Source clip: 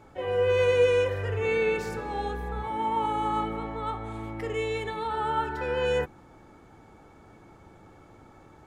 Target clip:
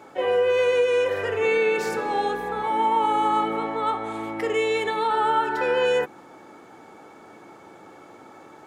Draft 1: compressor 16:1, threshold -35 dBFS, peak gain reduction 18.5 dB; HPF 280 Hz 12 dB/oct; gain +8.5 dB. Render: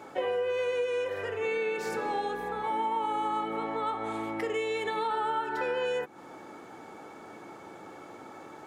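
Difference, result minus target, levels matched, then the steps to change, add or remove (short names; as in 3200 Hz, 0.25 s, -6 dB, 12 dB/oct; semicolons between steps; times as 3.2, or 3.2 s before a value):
compressor: peak gain reduction +9.5 dB
change: compressor 16:1, threshold -25 dBFS, peak gain reduction 9 dB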